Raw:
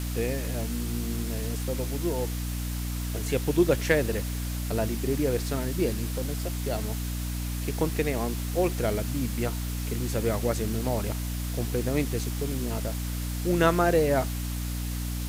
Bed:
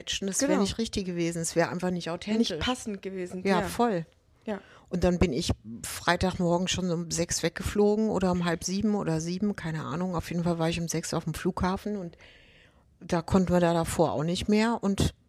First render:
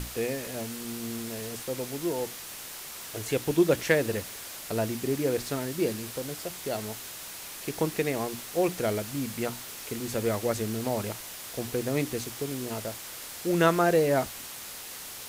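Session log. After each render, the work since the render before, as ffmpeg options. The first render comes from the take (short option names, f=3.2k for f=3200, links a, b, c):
-af "bandreject=f=60:t=h:w=6,bandreject=f=120:t=h:w=6,bandreject=f=180:t=h:w=6,bandreject=f=240:t=h:w=6,bandreject=f=300:t=h:w=6"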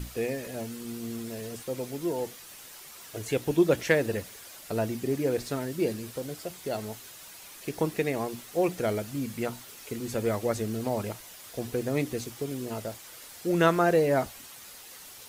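-af "afftdn=nr=8:nf=-42"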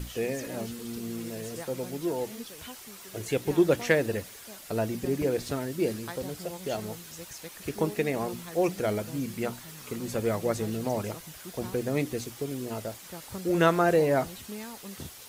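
-filter_complex "[1:a]volume=-16.5dB[a];[0:a][a]amix=inputs=2:normalize=0"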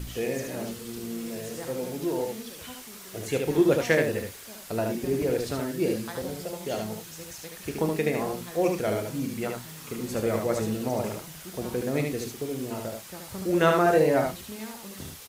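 -filter_complex "[0:a]asplit=2[a][b];[b]adelay=32,volume=-11.5dB[c];[a][c]amix=inputs=2:normalize=0,aecho=1:1:74:0.631"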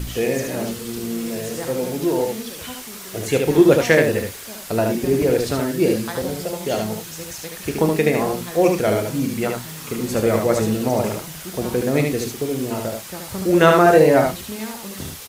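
-af "volume=8.5dB,alimiter=limit=-2dB:level=0:latency=1"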